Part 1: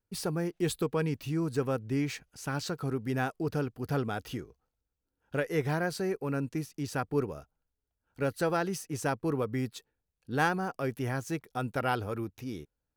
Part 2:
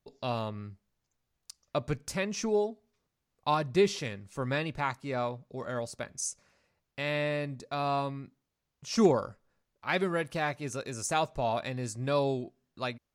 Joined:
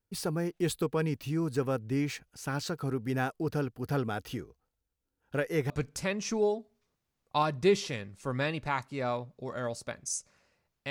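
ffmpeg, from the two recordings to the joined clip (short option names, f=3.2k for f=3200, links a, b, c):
-filter_complex "[0:a]apad=whole_dur=10.9,atrim=end=10.9,atrim=end=5.702[a];[1:a]atrim=start=1.818:end=7.02[b];[a][b]acrossfade=d=0.004:c1=hsin:c2=hsin"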